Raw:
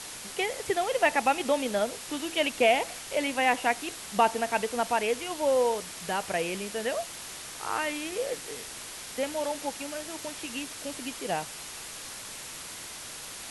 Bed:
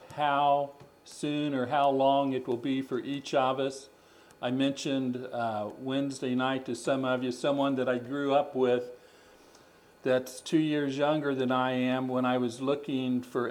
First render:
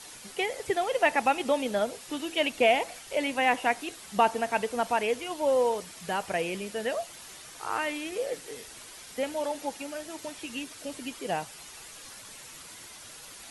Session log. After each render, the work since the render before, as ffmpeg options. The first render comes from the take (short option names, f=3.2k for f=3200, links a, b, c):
-af "afftdn=nr=8:nf=-42"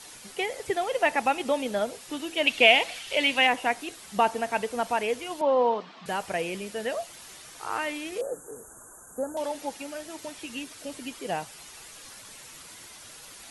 -filter_complex "[0:a]asettb=1/sr,asplit=3[a][b][c];[a]atrim=end=2.474[d];[b]atrim=start=2.47:end=3.47,asetpts=PTS-STARTPTS,afade=t=in:d=0.004:c=qsin,afade=t=out:st=0.996:d=0.004:c=qsin,equalizer=f=3k:t=o:w=1.3:g=12[e];[c]atrim=start=3.466[f];[d][e]acrossfade=d=0.004:c1=hsin:c2=qsin[g];[g][f]acrossfade=d=0.004:c1=qsin:c2=hsin,asettb=1/sr,asplit=3[h][i][j];[h]atrim=end=5.414[k];[i]atrim=start=5.41:end=6.06,asetpts=PTS-STARTPTS,afade=t=in:d=0.004:c=qsin,afade=t=out:st=0.646:d=0.004:c=qsin,highpass=f=170:w=0.5412,highpass=f=170:w=1.3066,equalizer=f=230:t=q:w=4:g=6,equalizer=f=750:t=q:w=4:g=6,equalizer=f=1.1k:t=q:w=4:g=9,equalizer=f=2.2k:t=q:w=4:g=-3,lowpass=f=4k:w=0.5412,lowpass=f=4k:w=1.3066[l];[j]atrim=start=6.056[m];[k][l]acrossfade=d=0.004:c1=hsin:c2=qsin[n];[n][m]acrossfade=d=0.004:c1=qsin:c2=hsin,asettb=1/sr,asplit=3[o][p][q];[o]atrim=end=8.214[r];[p]atrim=start=8.21:end=9.37,asetpts=PTS-STARTPTS,afade=t=in:d=0.004:c=qsin,afade=t=out:st=1.156:d=0.004:c=qsin,asuperstop=centerf=3300:order=20:qfactor=0.68[s];[q]atrim=start=9.366[t];[r][s]acrossfade=d=0.004:c1=hsin:c2=qsin[u];[u][t]acrossfade=d=0.004:c1=qsin:c2=hsin"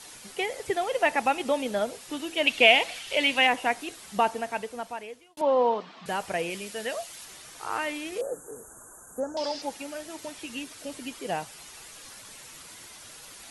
-filter_complex "[0:a]asettb=1/sr,asplit=3[a][b][c];[a]atrim=end=6.504[d];[b]atrim=start=6.5:end=7.25,asetpts=PTS-STARTPTS,afade=t=in:d=0.004:c=qsin,afade=t=out:st=0.746:d=0.004:c=qsin,tiltshelf=f=1.5k:g=-3.5[e];[c]atrim=start=7.246[f];[d][e]acrossfade=d=0.004:c1=hsin:c2=qsin[g];[g][f]acrossfade=d=0.004:c1=qsin:c2=hsin,asettb=1/sr,asplit=3[h][i][j];[h]atrim=end=9.204[k];[i]atrim=start=9.2:end=9.62,asetpts=PTS-STARTPTS,afade=t=in:d=0.004:c=qsin,afade=t=out:st=0.416:d=0.004:c=qsin,lowpass=f=5k:t=q:w=8.8[l];[j]atrim=start=9.616[m];[k][l]acrossfade=d=0.004:c1=hsin:c2=qsin[n];[n][m]acrossfade=d=0.004:c1=qsin:c2=hsin,asplit=2[o][p];[o]atrim=end=5.37,asetpts=PTS-STARTPTS,afade=t=out:st=4.08:d=1.29[q];[p]atrim=start=5.37,asetpts=PTS-STARTPTS,afade=t=in:d=0.004:c=hsin[r];[q][r]concat=n=2:v=0:a=1"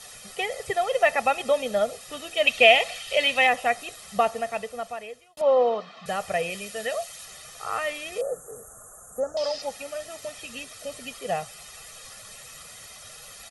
-af "aecho=1:1:1.6:0.77"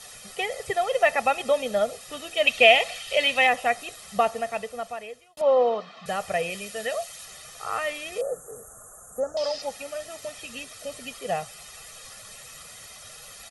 -af anull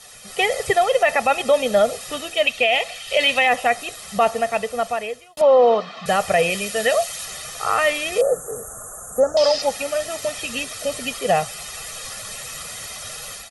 -af "dynaudnorm=f=230:g=3:m=11dB,alimiter=limit=-7.5dB:level=0:latency=1:release=20"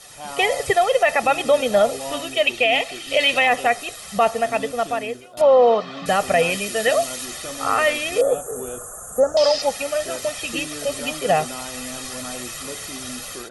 -filter_complex "[1:a]volume=-7.5dB[a];[0:a][a]amix=inputs=2:normalize=0"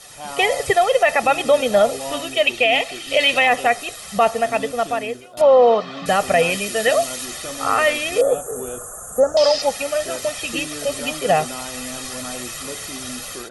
-af "volume=1.5dB"